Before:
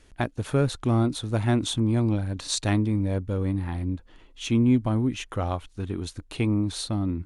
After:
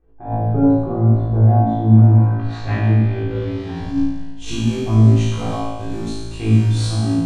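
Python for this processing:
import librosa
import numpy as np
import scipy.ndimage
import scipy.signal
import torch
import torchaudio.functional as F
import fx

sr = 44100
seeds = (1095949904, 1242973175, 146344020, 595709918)

p1 = fx.low_shelf(x, sr, hz=90.0, db=11.5, at=(3.8, 4.52))
p2 = fx.schmitt(p1, sr, flips_db=-28.5)
p3 = p1 + F.gain(torch.from_numpy(p2), -10.0).numpy()
p4 = fx.filter_sweep_lowpass(p3, sr, from_hz=760.0, to_hz=7900.0, start_s=1.71, end_s=4.2, q=1.5)
p5 = p4 + fx.room_flutter(p4, sr, wall_m=3.1, rt60_s=1.2, dry=0)
p6 = fx.room_shoebox(p5, sr, seeds[0], volume_m3=790.0, walls='furnished', distance_m=3.7)
p7 = fx.attack_slew(p6, sr, db_per_s=140.0)
y = F.gain(torch.from_numpy(p7), -8.5).numpy()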